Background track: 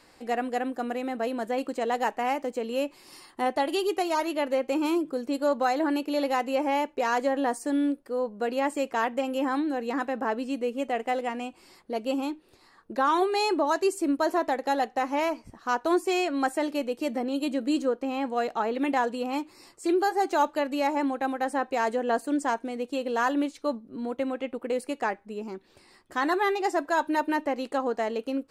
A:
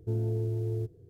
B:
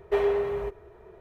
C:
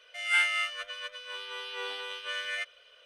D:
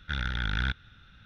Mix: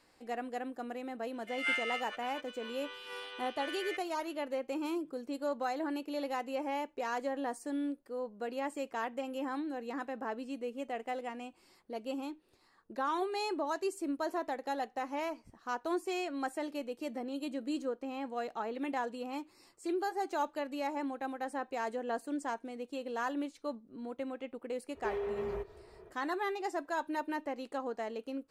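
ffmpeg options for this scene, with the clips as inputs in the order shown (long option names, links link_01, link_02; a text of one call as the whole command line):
ffmpeg -i bed.wav -i cue0.wav -i cue1.wav -i cue2.wav -filter_complex "[0:a]volume=-10dB[link_01];[3:a]aemphasis=mode=reproduction:type=cd[link_02];[2:a]acompressor=threshold=-28dB:ratio=6:attack=3.2:release=140:knee=1:detection=peak[link_03];[link_02]atrim=end=3.05,asetpts=PTS-STARTPTS,volume=-6.5dB,afade=type=in:duration=0.004:curve=hsin,afade=type=out:start_time=3.046:duration=0.004:curve=hsin,adelay=1330[link_04];[link_03]atrim=end=1.2,asetpts=PTS-STARTPTS,volume=-5dB,afade=type=in:duration=0.05,afade=type=out:start_time=1.15:duration=0.05,adelay=24930[link_05];[link_01][link_04][link_05]amix=inputs=3:normalize=0" out.wav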